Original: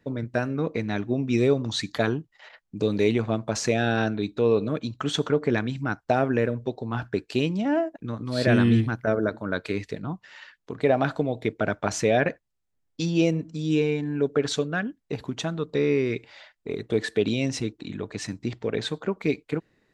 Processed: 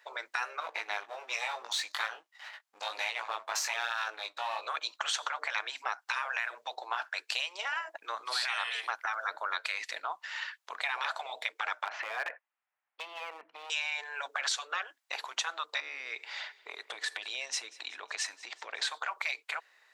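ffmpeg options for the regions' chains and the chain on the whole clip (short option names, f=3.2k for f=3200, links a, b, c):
-filter_complex "[0:a]asettb=1/sr,asplit=3[a][b][c];[a]atrim=end=0.604[d];[b]atrim=start=0.6:end=4.61,asetpts=PTS-STARTPTS,afade=t=in:d=0.004:c=qsin,afade=t=out:st=4.006:d=0.004:c=qsin,aeval=exprs='if(lt(val(0),0),0.447*val(0),val(0))':c=same,flanger=delay=17.5:depth=2.3:speed=1.2[e];[c]atrim=start=4.606[f];[d][e]acrossfade=d=0.004:c1=hsin:c2=qsin[g];[g][f]acrossfade=d=0.004:c1=qsin:c2=hsin,asettb=1/sr,asplit=3[h][i][j];[h]atrim=end=11.854[k];[i]atrim=start=11.85:end=13.7,asetpts=PTS-STARTPTS,afade=t=in:d=0.004:c=qsin,afade=t=out:st=1.846:d=0.004:c=qsin,lowpass=f=2.5k:w=0.5412,lowpass=f=2.5k:w=1.3066,acompressor=threshold=-27dB:ratio=16:attack=3.2:release=140:knee=1:detection=peak,asoftclip=type=hard:threshold=-28dB[l];[j]atrim=start=13.696[m];[k][l]acrossfade=d=0.004:c1=hsin:c2=qsin[n];[n][m]acrossfade=d=0.004:c1=qsin:c2=hsin,asettb=1/sr,asplit=3[o][p][q];[o]atrim=end=15.804[r];[p]atrim=start=15.8:end=18.82,asetpts=PTS-STARTPTS,afade=t=in:d=0.004:c=qsin,afade=t=out:st=3.016:d=0.004:c=qsin,acompressor=threshold=-35dB:ratio=3:attack=3.2:release=140:knee=1:detection=peak,aecho=1:1:186|372|558|744:0.075|0.0412|0.0227|0.0125,atrim=end_sample=133182[s];[q]atrim=start=18.816[t];[r][s]acrossfade=d=0.004:c1=hsin:c2=qsin[u];[u][t]acrossfade=d=0.004:c1=qsin:c2=hsin,afftfilt=real='re*lt(hypot(re,im),0.141)':imag='im*lt(hypot(re,im),0.141)':win_size=1024:overlap=0.75,highpass=f=790:w=0.5412,highpass=f=790:w=1.3066,acompressor=threshold=-38dB:ratio=4,volume=8dB"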